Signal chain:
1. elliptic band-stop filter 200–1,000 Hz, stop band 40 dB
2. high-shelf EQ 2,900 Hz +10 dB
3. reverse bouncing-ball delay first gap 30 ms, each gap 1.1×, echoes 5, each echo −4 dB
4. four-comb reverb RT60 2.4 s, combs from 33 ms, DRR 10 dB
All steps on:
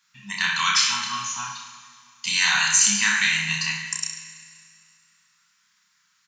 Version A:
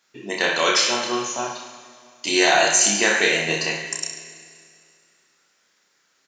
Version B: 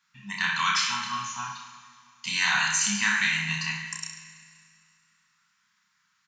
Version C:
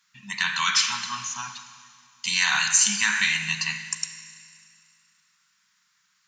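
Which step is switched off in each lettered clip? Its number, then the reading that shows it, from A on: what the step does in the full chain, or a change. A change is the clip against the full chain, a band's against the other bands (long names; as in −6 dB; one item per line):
1, 250 Hz band +9.0 dB
2, 8 kHz band −7.0 dB
3, change in integrated loudness −2.0 LU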